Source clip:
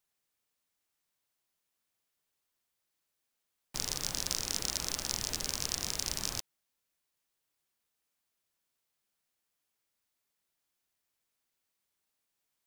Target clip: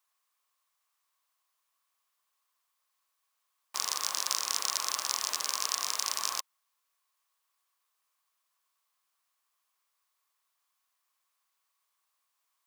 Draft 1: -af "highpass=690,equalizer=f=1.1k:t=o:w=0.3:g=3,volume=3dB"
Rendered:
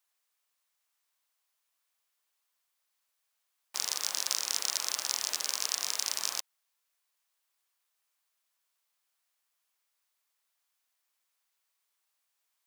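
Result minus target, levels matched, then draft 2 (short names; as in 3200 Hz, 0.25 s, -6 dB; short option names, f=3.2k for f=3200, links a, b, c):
1000 Hz band -6.5 dB
-af "highpass=690,equalizer=f=1.1k:t=o:w=0.3:g=14.5,volume=3dB"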